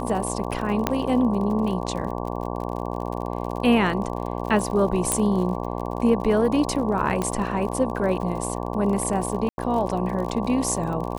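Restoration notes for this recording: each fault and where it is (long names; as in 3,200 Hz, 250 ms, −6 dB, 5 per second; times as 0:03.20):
mains buzz 60 Hz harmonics 19 −29 dBFS
surface crackle 52 per second −31 dBFS
0:00.87: click −6 dBFS
0:05.12: click −6 dBFS
0:07.22: click −12 dBFS
0:09.49–0:09.58: drop-out 90 ms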